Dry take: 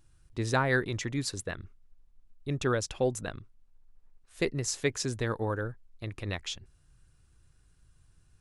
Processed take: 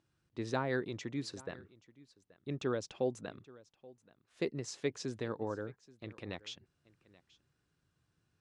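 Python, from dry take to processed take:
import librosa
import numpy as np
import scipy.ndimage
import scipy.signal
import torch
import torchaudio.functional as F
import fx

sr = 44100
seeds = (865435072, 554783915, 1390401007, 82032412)

p1 = fx.dynamic_eq(x, sr, hz=1700.0, q=1.2, threshold_db=-43.0, ratio=4.0, max_db=-5)
p2 = fx.bandpass_edges(p1, sr, low_hz=190.0, high_hz=5200.0)
p3 = fx.low_shelf(p2, sr, hz=390.0, db=5.0)
p4 = p3 + fx.echo_single(p3, sr, ms=829, db=-21.5, dry=0)
y = F.gain(torch.from_numpy(p4), -7.0).numpy()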